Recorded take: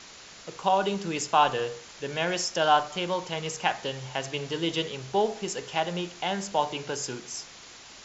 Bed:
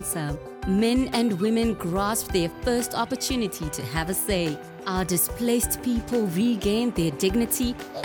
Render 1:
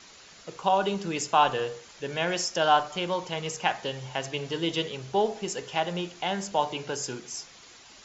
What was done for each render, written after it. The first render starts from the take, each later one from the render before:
broadband denoise 6 dB, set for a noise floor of −48 dBFS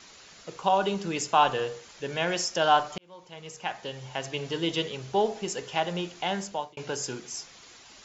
0:02.98–0:04.46: fade in
0:06.37–0:06.77: fade out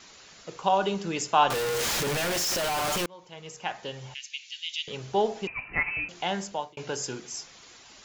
0:01.50–0:03.06: sign of each sample alone
0:04.14–0:04.88: elliptic band-pass filter 2,300–6,900 Hz, stop band 60 dB
0:05.47–0:06.09: voice inversion scrambler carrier 2,800 Hz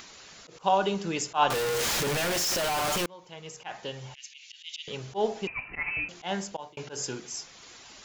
upward compression, threshold −44 dBFS
volume swells 102 ms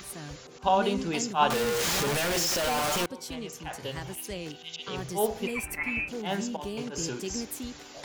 mix in bed −13 dB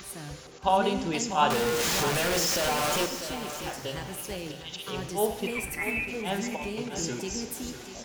repeating echo 646 ms, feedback 33%, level −11 dB
reverb whose tail is shaped and stops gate 420 ms falling, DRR 9.5 dB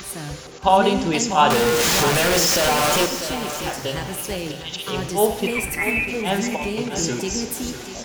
level +8.5 dB
brickwall limiter −3 dBFS, peak gain reduction 2 dB

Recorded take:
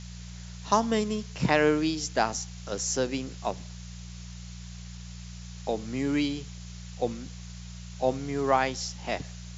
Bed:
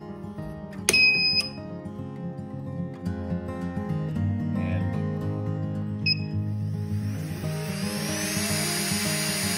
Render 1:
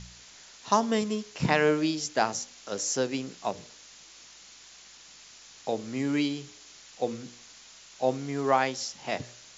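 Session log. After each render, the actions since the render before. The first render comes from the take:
hum removal 60 Hz, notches 10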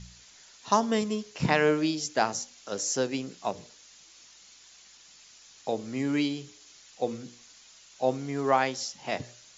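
broadband denoise 6 dB, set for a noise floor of −52 dBFS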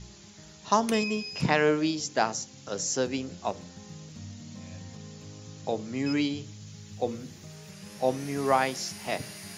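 mix in bed −16.5 dB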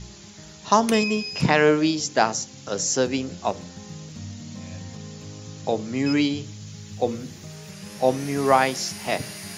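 level +6 dB
brickwall limiter −3 dBFS, peak gain reduction 2 dB

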